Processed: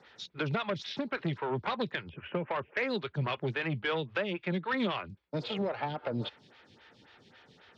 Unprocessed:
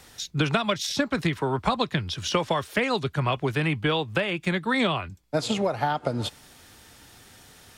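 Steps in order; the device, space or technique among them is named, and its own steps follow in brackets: 2.09–2.82 s: elliptic low-pass 2.6 kHz, stop band 40 dB; vibe pedal into a guitar amplifier (lamp-driven phase shifter 3.7 Hz; valve stage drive 23 dB, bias 0.25; cabinet simulation 110–4100 Hz, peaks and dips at 290 Hz -5 dB, 710 Hz -6 dB, 1.1 kHz -4 dB)

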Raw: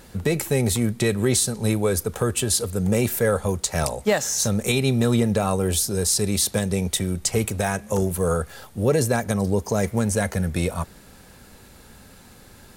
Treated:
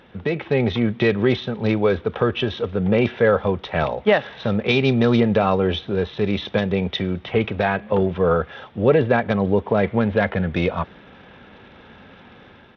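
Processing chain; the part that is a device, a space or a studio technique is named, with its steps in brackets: Bluetooth headset (high-pass 190 Hz 6 dB/octave; level rider gain up to 6 dB; resampled via 8 kHz; SBC 64 kbps 32 kHz)

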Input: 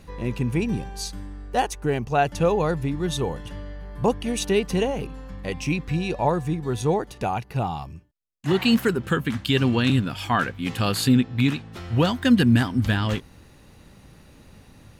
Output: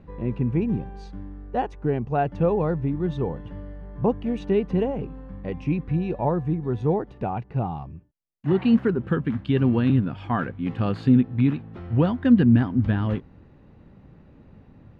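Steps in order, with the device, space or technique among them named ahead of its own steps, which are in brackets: phone in a pocket (low-pass 3 kHz 12 dB/octave; peaking EQ 200 Hz +5 dB 2.8 oct; treble shelf 2.3 kHz -12 dB); trim -3.5 dB

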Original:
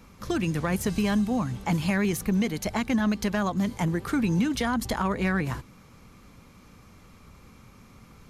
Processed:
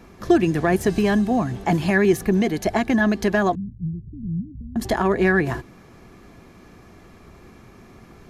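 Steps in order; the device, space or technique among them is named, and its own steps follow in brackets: inside a helmet (treble shelf 6 kHz -4.5 dB; small resonant body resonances 370/680/1700 Hz, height 12 dB, ringing for 35 ms); 3.55–4.76 s: inverse Chebyshev low-pass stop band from 710 Hz, stop band 70 dB; trim +3 dB

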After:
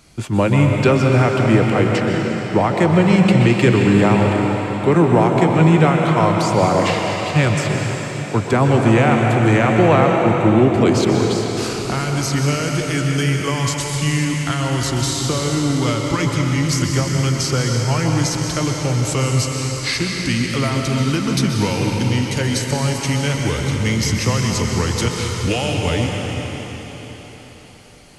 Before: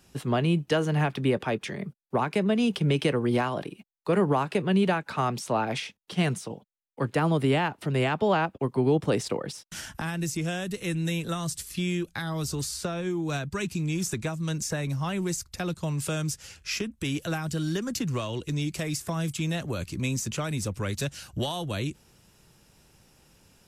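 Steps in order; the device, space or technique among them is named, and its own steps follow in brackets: slowed and reverbed (tape speed -16%; reverberation RT60 4.6 s, pre-delay 117 ms, DRR 0 dB); trim +9 dB

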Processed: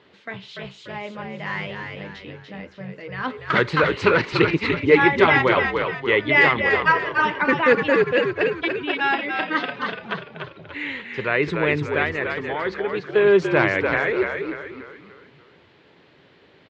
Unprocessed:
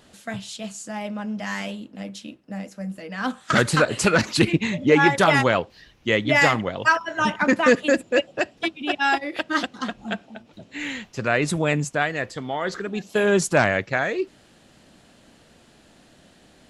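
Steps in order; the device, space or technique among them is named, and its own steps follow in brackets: frequency-shifting delay pedal into a guitar cabinet (frequency-shifting echo 291 ms, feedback 43%, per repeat -57 Hz, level -5 dB; cabinet simulation 110–4000 Hz, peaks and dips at 220 Hz -8 dB, 410 Hz +8 dB, 690 Hz -5 dB, 1 kHz +5 dB, 2.1 kHz +6 dB); trim -1.5 dB

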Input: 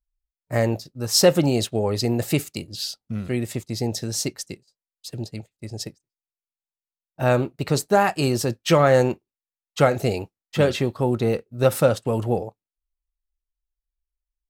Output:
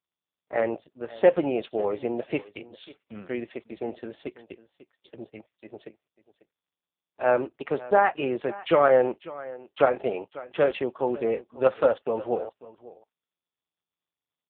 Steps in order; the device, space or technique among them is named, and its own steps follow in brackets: satellite phone (band-pass 390–3200 Hz; delay 545 ms -18.5 dB; AMR-NB 5.15 kbps 8 kHz)

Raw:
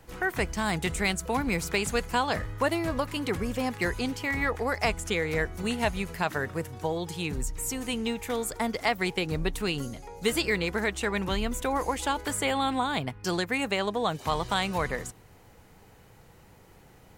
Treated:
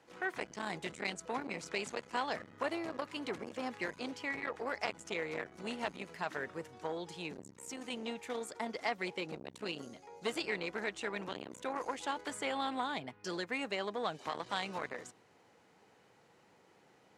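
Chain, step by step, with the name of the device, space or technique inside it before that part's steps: 0.93–2.15 s: low-pass 11 kHz 12 dB/octave; public-address speaker with an overloaded transformer (transformer saturation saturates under 900 Hz; band-pass 240–6700 Hz); trim -7 dB

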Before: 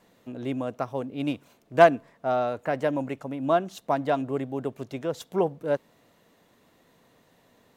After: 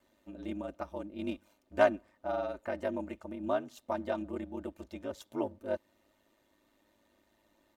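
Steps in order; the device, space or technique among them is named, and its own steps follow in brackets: ring-modulated robot voice (ring modulator 52 Hz; comb 3.3 ms, depth 68%); trim -8 dB

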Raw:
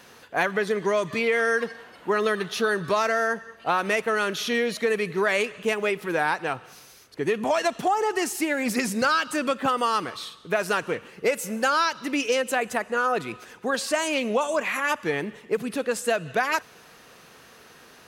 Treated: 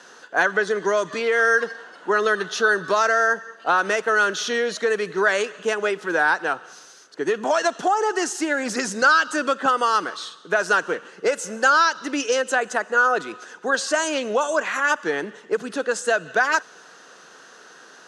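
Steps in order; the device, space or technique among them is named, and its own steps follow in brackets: television speaker (cabinet simulation 200–8500 Hz, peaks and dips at 230 Hz -6 dB, 1.5 kHz +8 dB, 2.3 kHz -9 dB, 6.3 kHz +5 dB); trim +2.5 dB

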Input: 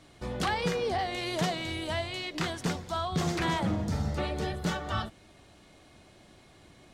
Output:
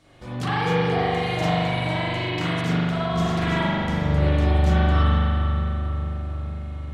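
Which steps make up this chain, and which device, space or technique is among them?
dub delay into a spring reverb (filtered feedback delay 450 ms, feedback 70%, low-pass 1.6 kHz, level -10 dB; spring tank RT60 2.5 s, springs 41 ms, chirp 75 ms, DRR -10 dB); trim -3 dB

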